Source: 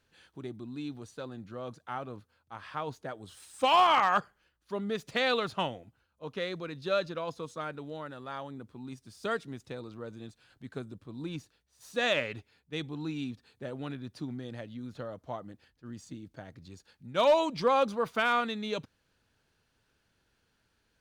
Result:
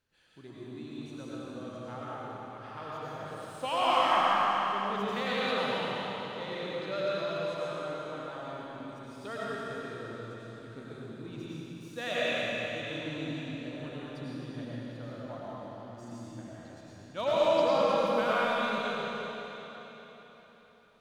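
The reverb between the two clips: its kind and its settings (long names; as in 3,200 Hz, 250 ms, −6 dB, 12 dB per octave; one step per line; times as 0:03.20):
comb and all-pass reverb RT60 4.1 s, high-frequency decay 0.95×, pre-delay 60 ms, DRR −8.5 dB
level −9 dB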